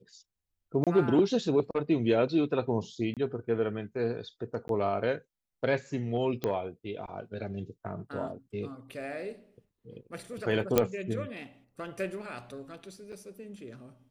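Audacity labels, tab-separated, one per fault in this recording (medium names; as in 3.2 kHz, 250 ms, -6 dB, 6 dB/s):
0.840000	0.870000	dropout 27 ms
3.140000	3.170000	dropout 27 ms
4.680000	4.690000	dropout 12 ms
6.440000	6.440000	pop -17 dBFS
10.780000	10.780000	pop -8 dBFS
13.120000	13.130000	dropout 6.8 ms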